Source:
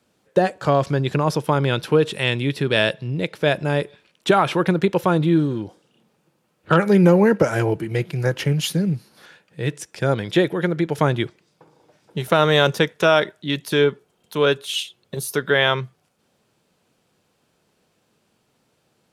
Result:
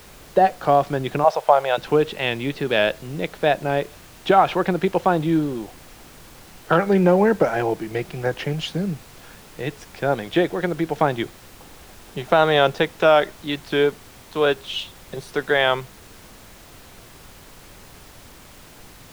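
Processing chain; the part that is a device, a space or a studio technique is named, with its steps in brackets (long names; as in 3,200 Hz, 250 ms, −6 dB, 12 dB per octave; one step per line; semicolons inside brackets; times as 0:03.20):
horn gramophone (band-pass filter 180–4,000 Hz; parametric band 740 Hz +9 dB 0.34 octaves; tape wow and flutter; pink noise bed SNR 22 dB)
0:01.24–0:01.78: low shelf with overshoot 410 Hz −13.5 dB, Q 3
level −1.5 dB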